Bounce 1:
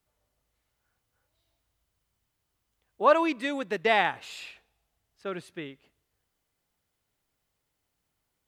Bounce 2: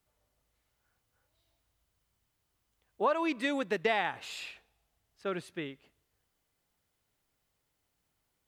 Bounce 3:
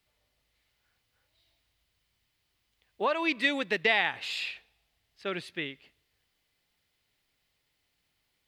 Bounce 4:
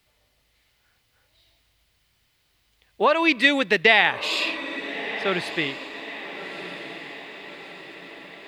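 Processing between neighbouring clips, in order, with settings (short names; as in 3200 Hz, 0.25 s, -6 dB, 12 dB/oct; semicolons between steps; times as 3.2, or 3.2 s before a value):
compressor 6:1, threshold -25 dBFS, peak gain reduction 10.5 dB
band shelf 3000 Hz +8.5 dB
diffused feedback echo 1.278 s, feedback 56%, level -12 dB; gain +9 dB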